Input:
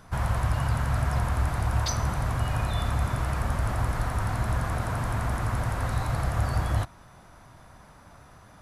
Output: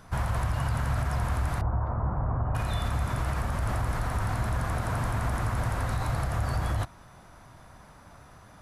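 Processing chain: 1.61–2.55 s: low-pass 1.2 kHz 24 dB/octave; peak limiter -19.5 dBFS, peak gain reduction 5.5 dB

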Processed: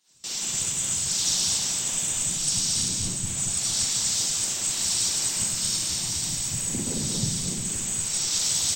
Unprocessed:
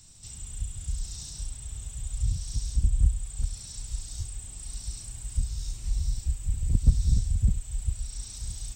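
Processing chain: in parallel at 0 dB: compression 12:1, threshold -32 dBFS, peak gain reduction 20.5 dB; on the sum: Schroeder reverb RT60 0.95 s, combs from 33 ms, DRR -7 dB; spectral gate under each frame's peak -15 dB weak; bass shelf 460 Hz -5.5 dB; harmonic-percussive split percussive +9 dB; gate with hold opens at -27 dBFS; on a send: feedback delay 229 ms, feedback 19%, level -4 dB; on the sum: harmony voices -3 st -7 dB

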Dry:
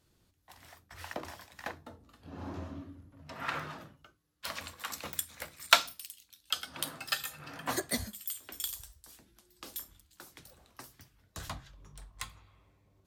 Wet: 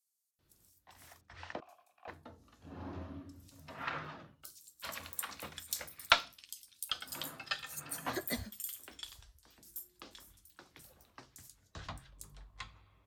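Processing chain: Chebyshev shaper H 6 -29 dB, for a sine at -2.5 dBFS; 1.21–1.69 s: vowel filter a; bands offset in time highs, lows 390 ms, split 5.9 kHz; trim -3.5 dB

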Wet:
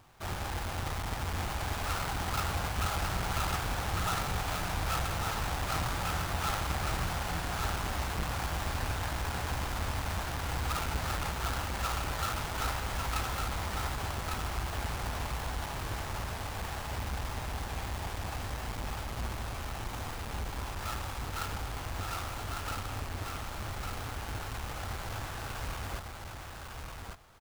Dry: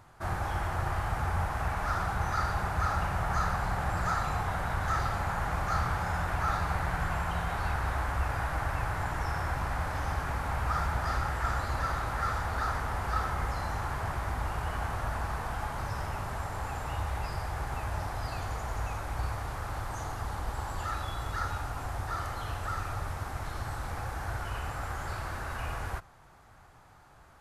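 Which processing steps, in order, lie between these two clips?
square wave that keeps the level; bass shelf 390 Hz -4 dB; on a send: delay 1152 ms -4 dB; on the sum: trim -6 dB

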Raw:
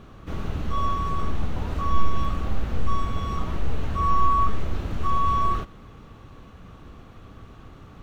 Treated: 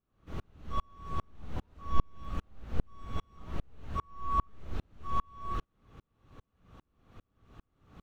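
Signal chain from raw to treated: sawtooth tremolo in dB swelling 2.5 Hz, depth 40 dB; trim -3.5 dB

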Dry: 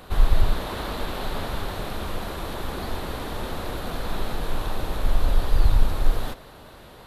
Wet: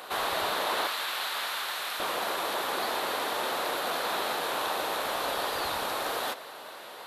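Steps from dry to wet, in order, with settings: high-pass 590 Hz 12 dB/octave, from 0.87 s 1.3 kHz, from 2.00 s 570 Hz; trim +5.5 dB

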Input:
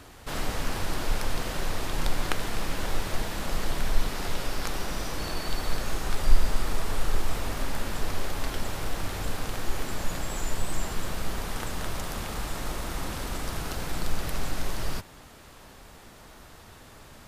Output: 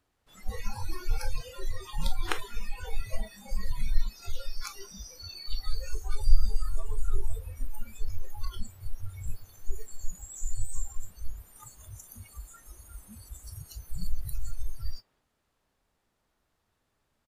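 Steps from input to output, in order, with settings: speakerphone echo 190 ms, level -11 dB; spectral noise reduction 28 dB

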